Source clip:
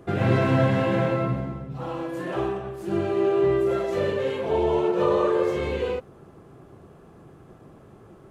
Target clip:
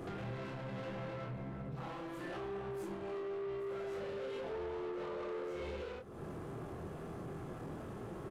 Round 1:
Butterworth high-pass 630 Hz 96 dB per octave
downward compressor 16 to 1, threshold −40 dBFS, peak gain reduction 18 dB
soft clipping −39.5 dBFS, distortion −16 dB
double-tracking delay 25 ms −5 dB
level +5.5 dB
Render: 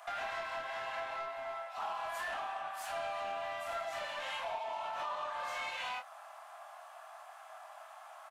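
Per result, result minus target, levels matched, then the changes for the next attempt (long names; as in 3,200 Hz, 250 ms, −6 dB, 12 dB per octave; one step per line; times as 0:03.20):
500 Hz band −6.5 dB; soft clipping: distortion −7 dB
remove: Butterworth high-pass 630 Hz 96 dB per octave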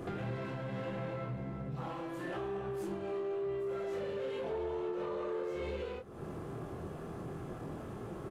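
soft clipping: distortion −7 dB
change: soft clipping −46.5 dBFS, distortion −9 dB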